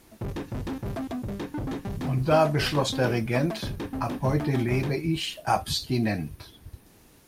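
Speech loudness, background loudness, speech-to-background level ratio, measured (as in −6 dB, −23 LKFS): −26.5 LKFS, −34.5 LKFS, 8.0 dB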